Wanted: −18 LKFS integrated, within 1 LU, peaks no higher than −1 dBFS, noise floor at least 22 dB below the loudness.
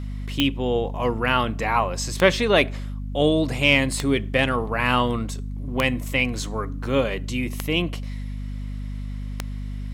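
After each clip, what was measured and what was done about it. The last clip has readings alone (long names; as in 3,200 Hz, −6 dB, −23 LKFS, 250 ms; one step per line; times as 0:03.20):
number of clicks 6; mains hum 50 Hz; hum harmonics up to 250 Hz; level of the hum −28 dBFS; integrated loudness −23.0 LKFS; sample peak −4.0 dBFS; target loudness −18.0 LKFS
→ click removal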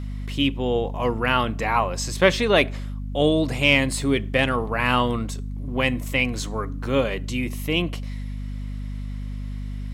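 number of clicks 0; mains hum 50 Hz; hum harmonics up to 250 Hz; level of the hum −28 dBFS
→ hum removal 50 Hz, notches 5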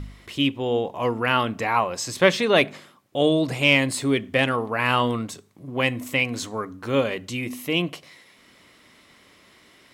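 mains hum none found; integrated loudness −23.0 LKFS; sample peak −4.5 dBFS; target loudness −18.0 LKFS
→ level +5 dB
brickwall limiter −1 dBFS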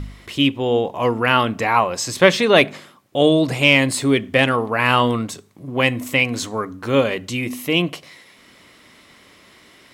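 integrated loudness −18.0 LKFS; sample peak −1.0 dBFS; background noise floor −50 dBFS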